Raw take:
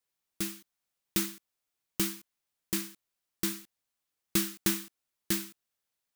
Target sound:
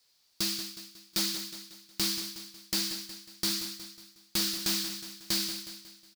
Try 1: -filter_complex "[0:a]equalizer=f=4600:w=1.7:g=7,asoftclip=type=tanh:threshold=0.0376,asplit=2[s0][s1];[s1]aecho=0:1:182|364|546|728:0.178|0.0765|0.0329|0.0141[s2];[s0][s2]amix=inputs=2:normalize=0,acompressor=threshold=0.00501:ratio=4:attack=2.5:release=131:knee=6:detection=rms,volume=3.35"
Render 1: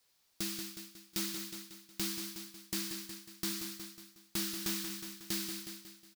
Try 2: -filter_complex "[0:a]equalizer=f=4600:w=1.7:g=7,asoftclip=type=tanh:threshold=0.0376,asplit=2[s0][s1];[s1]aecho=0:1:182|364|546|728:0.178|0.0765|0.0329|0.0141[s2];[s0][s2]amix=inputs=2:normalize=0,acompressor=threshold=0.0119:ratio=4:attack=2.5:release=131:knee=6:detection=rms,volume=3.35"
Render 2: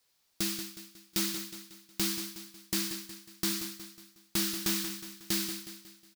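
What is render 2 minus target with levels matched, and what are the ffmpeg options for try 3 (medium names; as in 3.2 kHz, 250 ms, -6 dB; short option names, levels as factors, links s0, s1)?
4 kHz band -3.0 dB
-filter_complex "[0:a]equalizer=f=4600:w=1.7:g=16.5,asoftclip=type=tanh:threshold=0.0376,asplit=2[s0][s1];[s1]aecho=0:1:182|364|546|728:0.178|0.0765|0.0329|0.0141[s2];[s0][s2]amix=inputs=2:normalize=0,acompressor=threshold=0.0119:ratio=4:attack=2.5:release=131:knee=6:detection=rms,volume=3.35"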